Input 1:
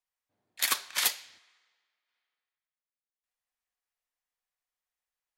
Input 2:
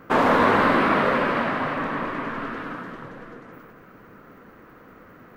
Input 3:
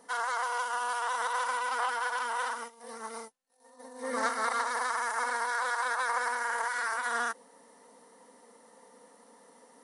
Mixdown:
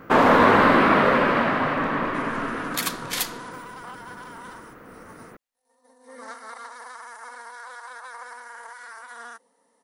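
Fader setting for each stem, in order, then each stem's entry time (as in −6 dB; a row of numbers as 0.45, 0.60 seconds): 0.0, +2.5, −9.5 decibels; 2.15, 0.00, 2.05 seconds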